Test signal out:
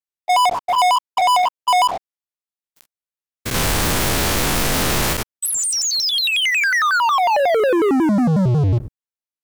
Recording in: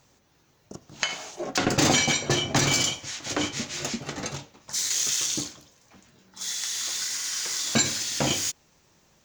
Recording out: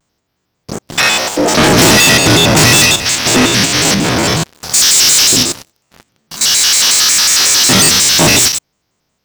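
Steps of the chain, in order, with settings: stepped spectrum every 0.1 s; sample leveller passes 5; shaped vibrato square 5.5 Hz, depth 250 cents; gain +7 dB

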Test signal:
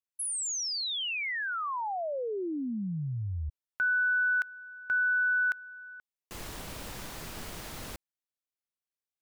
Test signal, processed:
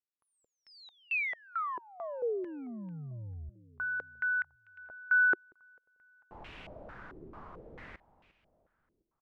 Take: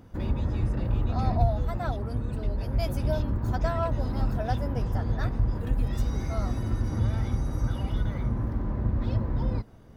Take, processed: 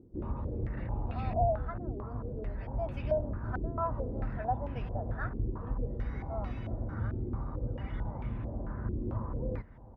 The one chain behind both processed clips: feedback echo 0.354 s, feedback 53%, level -19 dB; stepped low-pass 4.5 Hz 370–2600 Hz; gain -9 dB

